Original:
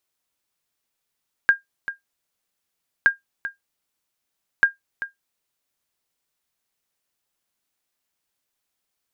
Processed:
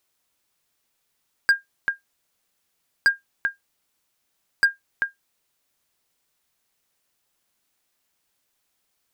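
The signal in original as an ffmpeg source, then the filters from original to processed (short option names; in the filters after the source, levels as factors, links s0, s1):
-f lavfi -i "aevalsrc='0.501*(sin(2*PI*1610*mod(t,1.57))*exp(-6.91*mod(t,1.57)/0.14)+0.211*sin(2*PI*1610*max(mod(t,1.57)-0.39,0))*exp(-6.91*max(mod(t,1.57)-0.39,0)/0.14))':d=4.71:s=44100"
-filter_complex "[0:a]asplit=2[s0][s1];[s1]alimiter=limit=0.126:level=0:latency=1:release=90,volume=1[s2];[s0][s2]amix=inputs=2:normalize=0,volume=4.47,asoftclip=hard,volume=0.224"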